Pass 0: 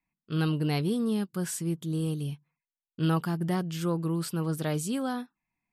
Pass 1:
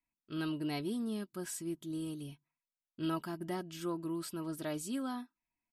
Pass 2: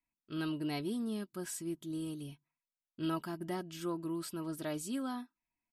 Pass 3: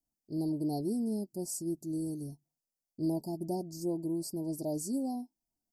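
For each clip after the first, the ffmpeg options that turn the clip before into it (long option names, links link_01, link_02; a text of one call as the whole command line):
ffmpeg -i in.wav -af "aecho=1:1:3.1:0.61,volume=-8.5dB" out.wav
ffmpeg -i in.wav -af anull out.wav
ffmpeg -i in.wav -af "asuperstop=centerf=2000:order=20:qfactor=0.54,volume=4dB" out.wav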